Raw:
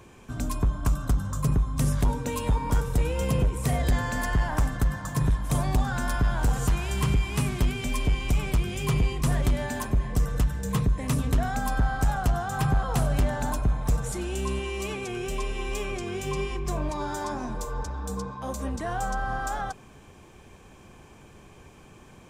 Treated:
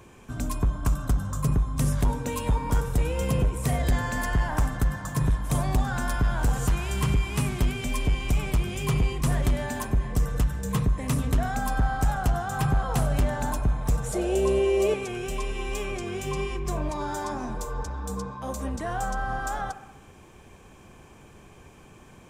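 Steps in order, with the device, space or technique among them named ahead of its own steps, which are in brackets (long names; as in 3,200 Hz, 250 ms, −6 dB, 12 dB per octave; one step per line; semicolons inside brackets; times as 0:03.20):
exciter from parts (in parallel at −14 dB: high-pass filter 4,000 Hz 24 dB per octave + soft clipping −38 dBFS, distortion −9 dB)
0:14.13–0:14.94: on the sum: flat-topped bell 530 Hz +14 dB 1.1 octaves
delay with a band-pass on its return 64 ms, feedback 64%, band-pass 1,000 Hz, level −13.5 dB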